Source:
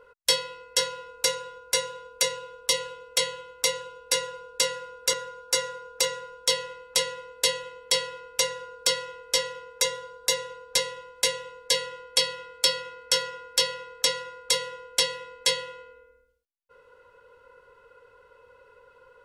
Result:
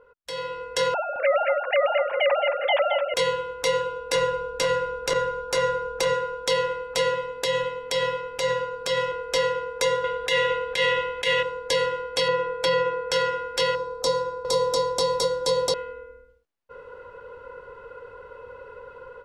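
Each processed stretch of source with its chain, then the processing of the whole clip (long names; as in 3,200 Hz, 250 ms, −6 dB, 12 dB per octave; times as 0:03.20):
0:00.94–0:03.14: three sine waves on the formant tracks + multi-tap delay 219/881 ms −11/−18 dB
0:04.15–0:06.14: low-shelf EQ 150 Hz +7.5 dB + saturating transformer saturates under 1,800 Hz
0:07.13–0:09.12: comb filter 7.3 ms, depth 54% + downward compressor 12 to 1, threshold −27 dBFS
0:10.04–0:11.43: flat-topped bell 2,500 Hz +9.5 dB 1.3 octaves + compressor whose output falls as the input rises −23 dBFS, ratio −0.5
0:12.28–0:13.12: high-shelf EQ 3,500 Hz −9.5 dB + comb filter 6.1 ms, depth 89%
0:13.75–0:15.74: flat-topped bell 2,200 Hz −15.5 dB 1.3 octaves + single-tap delay 697 ms −3 dB
whole clip: low-pass filter 1,300 Hz 6 dB per octave; brickwall limiter −27 dBFS; automatic gain control gain up to 14 dB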